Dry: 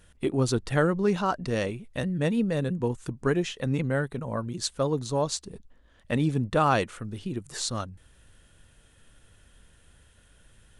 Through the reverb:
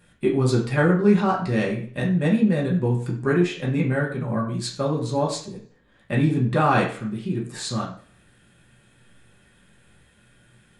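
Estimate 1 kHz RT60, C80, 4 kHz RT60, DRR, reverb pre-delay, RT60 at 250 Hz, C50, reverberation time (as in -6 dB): 0.50 s, 11.5 dB, 0.45 s, -3.5 dB, 3 ms, 0.60 s, 7.5 dB, 0.50 s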